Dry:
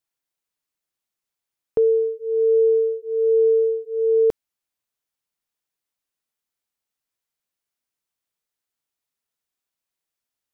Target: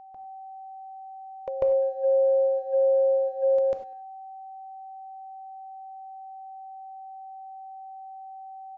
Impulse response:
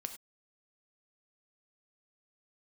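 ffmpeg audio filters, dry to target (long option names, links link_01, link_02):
-filter_complex "[0:a]agate=range=-11dB:threshold=-27dB:ratio=16:detection=peak,tiltshelf=frequency=750:gain=-5.5,acompressor=threshold=-26dB:ratio=20,aeval=exprs='val(0)+0.01*sin(2*PI*640*n/s)':channel_layout=same,asetrate=52920,aresample=44100,asplit=2[link_01][link_02];[link_02]adelay=200,highpass=300,lowpass=3400,asoftclip=type=hard:threshold=-28dB,volume=-27dB[link_03];[link_01][link_03]amix=inputs=2:normalize=0,asplit=2[link_04][link_05];[1:a]atrim=start_sample=2205,lowshelf=frequency=190:gain=8.5,adelay=145[link_06];[link_05][link_06]afir=irnorm=-1:irlink=0,volume=8.5dB[link_07];[link_04][link_07]amix=inputs=2:normalize=0,aresample=16000,aresample=44100,volume=-4.5dB"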